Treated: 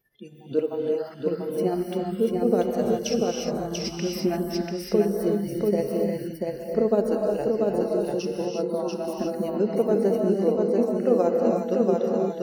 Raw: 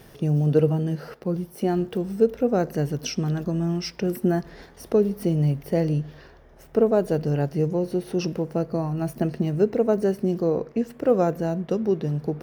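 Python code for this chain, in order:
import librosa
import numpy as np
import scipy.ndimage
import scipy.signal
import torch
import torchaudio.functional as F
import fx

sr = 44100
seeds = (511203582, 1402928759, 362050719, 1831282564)

y = fx.dynamic_eq(x, sr, hz=1600.0, q=1.9, threshold_db=-47.0, ratio=4.0, max_db=-5)
y = fx.noise_reduce_blind(y, sr, reduce_db=29)
y = y * (1.0 - 0.53 / 2.0 + 0.53 / 2.0 * np.cos(2.0 * np.pi * 15.0 * (np.arange(len(y)) / sr)))
y = y + 10.0 ** (-3.0 / 20.0) * np.pad(y, (int(689 * sr / 1000.0), 0))[:len(y)]
y = fx.rev_gated(y, sr, seeds[0], gate_ms=380, shape='rising', drr_db=1.0)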